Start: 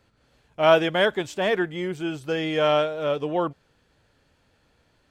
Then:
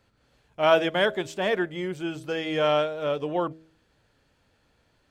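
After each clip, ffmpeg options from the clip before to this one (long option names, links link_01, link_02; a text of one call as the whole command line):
ffmpeg -i in.wav -af "bandreject=frequency=80:width_type=h:width=4,bandreject=frequency=160:width_type=h:width=4,bandreject=frequency=240:width_type=h:width=4,bandreject=frequency=320:width_type=h:width=4,bandreject=frequency=400:width_type=h:width=4,bandreject=frequency=480:width_type=h:width=4,bandreject=frequency=560:width_type=h:width=4,bandreject=frequency=640:width_type=h:width=4,volume=-2dB" out.wav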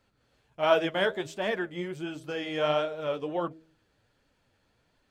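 ffmpeg -i in.wav -af "flanger=delay=2.9:depth=8.7:regen=47:speed=1.4:shape=triangular" out.wav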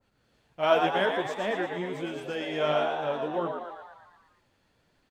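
ffmpeg -i in.wav -filter_complex "[0:a]asplit=9[link_01][link_02][link_03][link_04][link_05][link_06][link_07][link_08][link_09];[link_02]adelay=116,afreqshift=89,volume=-5.5dB[link_10];[link_03]adelay=232,afreqshift=178,volume=-10.4dB[link_11];[link_04]adelay=348,afreqshift=267,volume=-15.3dB[link_12];[link_05]adelay=464,afreqshift=356,volume=-20.1dB[link_13];[link_06]adelay=580,afreqshift=445,volume=-25dB[link_14];[link_07]adelay=696,afreqshift=534,volume=-29.9dB[link_15];[link_08]adelay=812,afreqshift=623,volume=-34.8dB[link_16];[link_09]adelay=928,afreqshift=712,volume=-39.7dB[link_17];[link_01][link_10][link_11][link_12][link_13][link_14][link_15][link_16][link_17]amix=inputs=9:normalize=0,adynamicequalizer=threshold=0.0126:dfrequency=1700:dqfactor=0.7:tfrequency=1700:tqfactor=0.7:attack=5:release=100:ratio=0.375:range=2:mode=cutabove:tftype=highshelf" out.wav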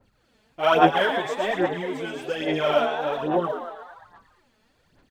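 ffmpeg -i in.wav -af "aphaser=in_gain=1:out_gain=1:delay=4.7:decay=0.62:speed=1.2:type=sinusoidal,volume=2.5dB" out.wav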